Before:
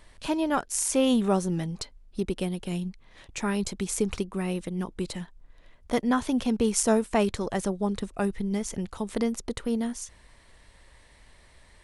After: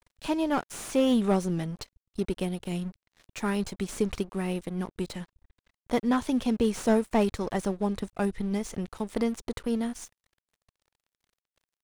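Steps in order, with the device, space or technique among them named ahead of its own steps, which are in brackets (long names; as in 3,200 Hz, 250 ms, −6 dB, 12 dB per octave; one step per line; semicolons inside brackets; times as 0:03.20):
early transistor amplifier (dead-zone distortion −46.5 dBFS; slew-rate limiting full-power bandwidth 80 Hz)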